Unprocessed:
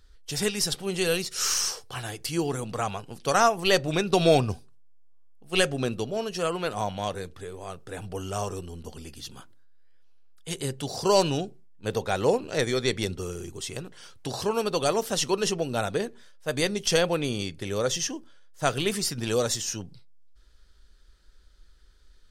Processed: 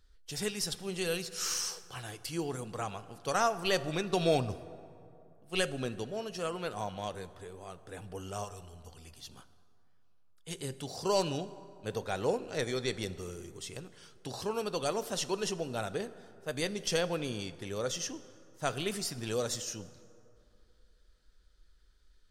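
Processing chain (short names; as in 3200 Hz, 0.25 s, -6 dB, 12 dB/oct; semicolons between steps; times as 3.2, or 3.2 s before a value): 8.44–9.27 bell 290 Hz -14.5 dB -> -7 dB 1.5 oct; plate-style reverb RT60 2.7 s, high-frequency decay 0.5×, DRR 14.5 dB; gain -8 dB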